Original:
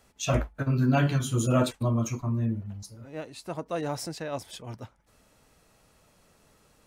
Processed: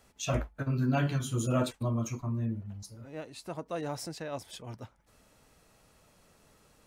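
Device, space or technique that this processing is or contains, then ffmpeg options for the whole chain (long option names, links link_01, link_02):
parallel compression: -filter_complex "[0:a]asplit=2[link_01][link_02];[link_02]acompressor=threshold=-44dB:ratio=6,volume=-3dB[link_03];[link_01][link_03]amix=inputs=2:normalize=0,volume=-5.5dB"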